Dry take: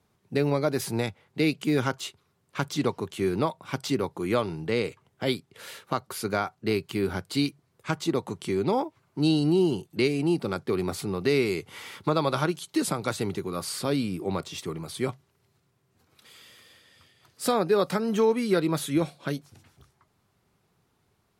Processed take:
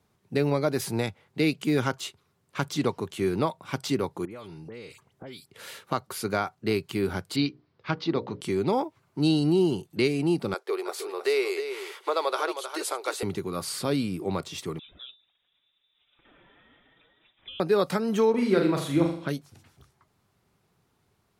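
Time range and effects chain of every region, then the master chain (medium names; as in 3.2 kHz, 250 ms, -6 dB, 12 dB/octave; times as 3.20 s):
4.25–5.50 s: phase dispersion highs, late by 64 ms, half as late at 2.4 kHz + compression 5:1, threshold -40 dBFS
7.36–8.41 s: steep low-pass 5.2 kHz 48 dB/octave + hum notches 60/120/180/240/300/360/420/480/540/600 Hz
10.54–13.23 s: elliptic high-pass 390 Hz, stop band 60 dB + delay 314 ms -9 dB
14.79–17.60 s: touch-sensitive flanger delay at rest 6.8 ms, full sweep at -27.5 dBFS + compression 2:1, threshold -53 dBFS + frequency inversion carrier 3.7 kHz
18.30–19.29 s: low-pass 3.6 kHz 6 dB/octave + flutter echo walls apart 7.1 m, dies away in 0.52 s
whole clip: none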